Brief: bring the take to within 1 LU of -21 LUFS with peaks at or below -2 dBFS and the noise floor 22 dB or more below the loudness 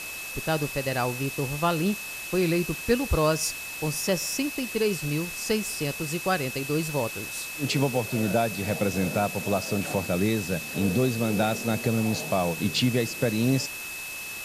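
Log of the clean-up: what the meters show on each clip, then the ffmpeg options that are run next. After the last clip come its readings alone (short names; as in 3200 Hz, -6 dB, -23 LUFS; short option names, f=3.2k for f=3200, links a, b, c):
steady tone 2600 Hz; tone level -36 dBFS; noise floor -36 dBFS; noise floor target -49 dBFS; loudness -26.5 LUFS; peak -10.5 dBFS; loudness target -21.0 LUFS
-> -af "bandreject=f=2.6k:w=30"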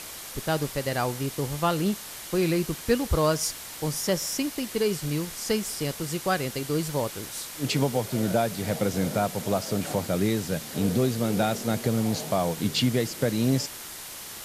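steady tone none; noise floor -40 dBFS; noise floor target -49 dBFS
-> -af "afftdn=nr=9:nf=-40"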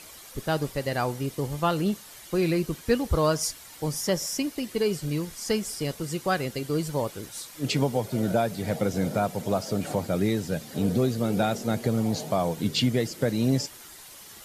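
noise floor -47 dBFS; noise floor target -50 dBFS
-> -af "afftdn=nr=6:nf=-47"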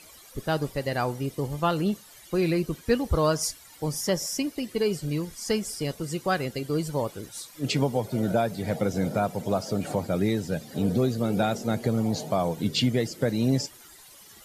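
noise floor -50 dBFS; loudness -27.5 LUFS; peak -11.0 dBFS; loudness target -21.0 LUFS
-> -af "volume=6.5dB"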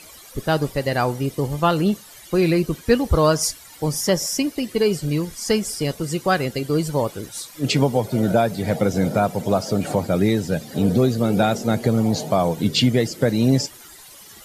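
loudness -21.0 LUFS; peak -4.5 dBFS; noise floor -44 dBFS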